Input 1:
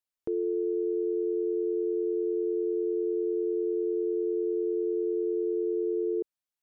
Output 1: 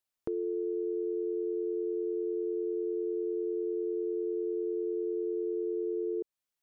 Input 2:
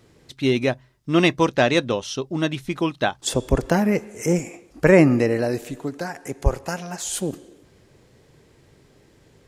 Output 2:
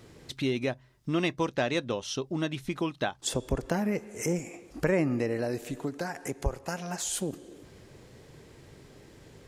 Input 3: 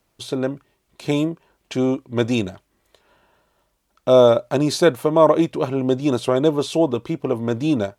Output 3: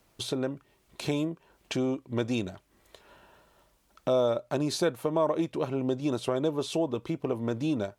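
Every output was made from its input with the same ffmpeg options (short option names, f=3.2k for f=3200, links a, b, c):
-af "acompressor=threshold=-38dB:ratio=2,volume=2.5dB"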